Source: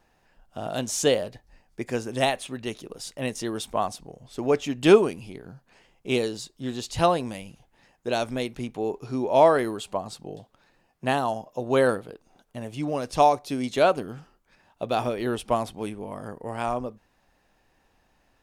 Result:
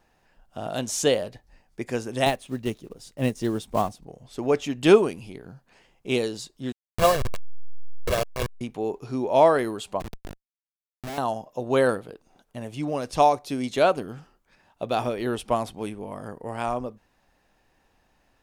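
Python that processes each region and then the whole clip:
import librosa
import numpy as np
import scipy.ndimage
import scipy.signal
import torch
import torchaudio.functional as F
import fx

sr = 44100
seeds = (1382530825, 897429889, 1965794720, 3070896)

y = fx.chain(x, sr, fx.block_float(bits=5),
    fx.low_shelf(hz=400.0, db=10.5),
    fx.upward_expand(threshold_db=-39.0, expansion=1.5), at=(2.26, 4.07))
y = fx.chain(y, sr, fx.delta_hold(step_db=-20.0),
    fx.comb(ms=1.8, depth=0.6), at=(6.72, 8.61))
y = fx.chain(y, sr, fx.env_lowpass_down(base_hz=1100.0, full_db=-24.0),
    fx.high_shelf(hz=3000.0, db=-3.5),
    fx.schmitt(flips_db=-33.0), at=(10.0, 11.18))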